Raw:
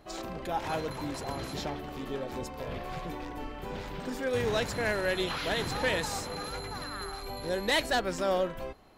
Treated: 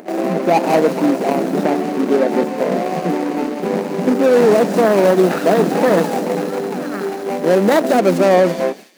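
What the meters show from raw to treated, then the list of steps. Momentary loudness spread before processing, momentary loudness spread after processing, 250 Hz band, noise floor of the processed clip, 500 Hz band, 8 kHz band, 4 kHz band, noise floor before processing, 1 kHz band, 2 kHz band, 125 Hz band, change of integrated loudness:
10 LU, 9 LU, +21.0 dB, −25 dBFS, +19.0 dB, +8.5 dB, +3.5 dB, −42 dBFS, +15.5 dB, +8.5 dB, +13.5 dB, +17.0 dB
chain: running median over 41 samples
noise gate with hold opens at −40 dBFS
dynamic equaliser 680 Hz, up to +5 dB, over −53 dBFS, Q 7.1
elliptic high-pass filter 180 Hz, stop band 40 dB
parametric band 3,400 Hz −4 dB 0.9 octaves
upward compression, threshold −47 dBFS
delay with a high-pass on its return 182 ms, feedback 35%, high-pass 3,900 Hz, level −7 dB
boost into a limiter +25.5 dB
level −2 dB

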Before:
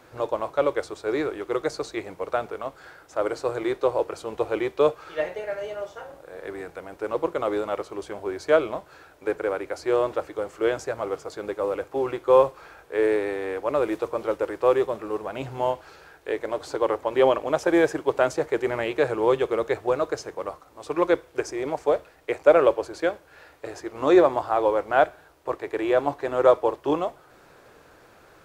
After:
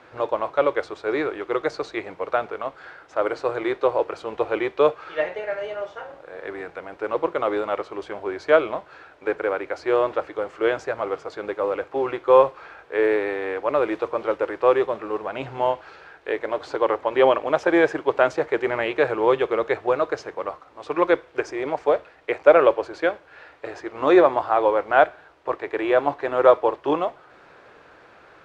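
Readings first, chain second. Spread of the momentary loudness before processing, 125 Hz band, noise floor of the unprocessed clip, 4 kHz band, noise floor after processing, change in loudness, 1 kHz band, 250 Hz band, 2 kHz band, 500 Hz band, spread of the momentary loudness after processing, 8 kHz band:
15 LU, −2.0 dB, −54 dBFS, +2.0 dB, −51 dBFS, +2.5 dB, +3.5 dB, +1.0 dB, +5.0 dB, +2.0 dB, 14 LU, can't be measured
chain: low-pass filter 2,700 Hz 12 dB per octave
spectral tilt +2 dB per octave
level +4 dB

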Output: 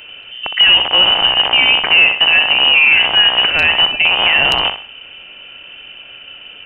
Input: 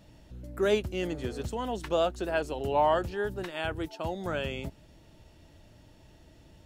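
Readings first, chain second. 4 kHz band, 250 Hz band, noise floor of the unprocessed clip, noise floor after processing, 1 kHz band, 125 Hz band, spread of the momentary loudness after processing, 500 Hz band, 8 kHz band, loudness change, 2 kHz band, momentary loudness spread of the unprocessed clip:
+35.0 dB, +2.0 dB, −57 dBFS, −37 dBFS, +11.5 dB, +2.0 dB, 6 LU, +2.0 dB, can't be measured, +21.5 dB, +27.5 dB, 9 LU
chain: loose part that buzzes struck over −40 dBFS, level −25 dBFS
high-pass filter 250 Hz 24 dB per octave
high-shelf EQ 2,300 Hz −10 dB
in parallel at +2 dB: downward compressor 12 to 1, threshold −36 dBFS, peak gain reduction 15.5 dB
on the sum: soft clipping −16.5 dBFS, distortion −21 dB
on a send: flutter between parallel walls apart 10.7 metres, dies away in 0.38 s
on the sum: voice inversion scrambler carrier 3,300 Hz
boost into a limiter +20.5 dB
level −1 dB
AAC 128 kbit/s 48,000 Hz

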